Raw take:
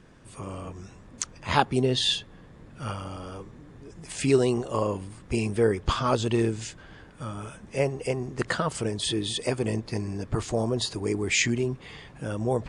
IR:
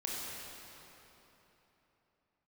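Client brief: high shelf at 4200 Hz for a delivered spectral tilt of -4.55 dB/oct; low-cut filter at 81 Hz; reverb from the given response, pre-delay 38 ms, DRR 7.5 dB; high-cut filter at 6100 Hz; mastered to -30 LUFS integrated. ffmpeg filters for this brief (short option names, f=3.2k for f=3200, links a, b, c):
-filter_complex "[0:a]highpass=81,lowpass=6.1k,highshelf=f=4.2k:g=4,asplit=2[a][b];[1:a]atrim=start_sample=2205,adelay=38[c];[b][c]afir=irnorm=-1:irlink=0,volume=-11dB[d];[a][d]amix=inputs=2:normalize=0,volume=-3dB"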